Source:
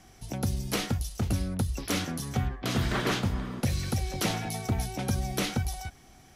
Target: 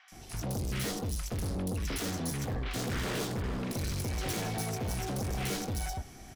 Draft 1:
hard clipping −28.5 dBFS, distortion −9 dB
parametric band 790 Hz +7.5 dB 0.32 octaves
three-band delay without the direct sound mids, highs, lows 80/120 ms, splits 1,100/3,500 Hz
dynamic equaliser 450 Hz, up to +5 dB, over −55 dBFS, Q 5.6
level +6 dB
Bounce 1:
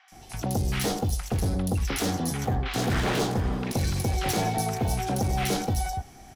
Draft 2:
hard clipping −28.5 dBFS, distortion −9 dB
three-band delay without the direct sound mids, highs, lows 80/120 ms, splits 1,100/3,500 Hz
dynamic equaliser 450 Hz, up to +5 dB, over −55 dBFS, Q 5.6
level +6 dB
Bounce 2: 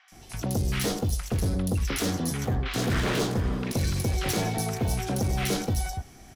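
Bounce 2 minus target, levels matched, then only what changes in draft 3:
hard clipping: distortion −5 dB
change: hard clipping −38 dBFS, distortion −3 dB

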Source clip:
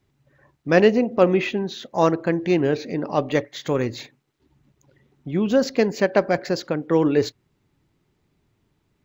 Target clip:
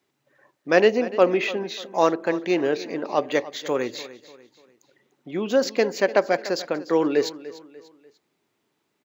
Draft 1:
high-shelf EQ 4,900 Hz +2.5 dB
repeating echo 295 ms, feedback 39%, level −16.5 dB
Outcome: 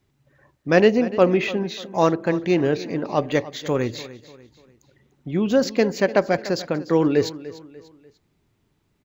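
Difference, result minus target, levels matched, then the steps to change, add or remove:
250 Hz band +3.0 dB
add first: high-pass filter 330 Hz 12 dB per octave

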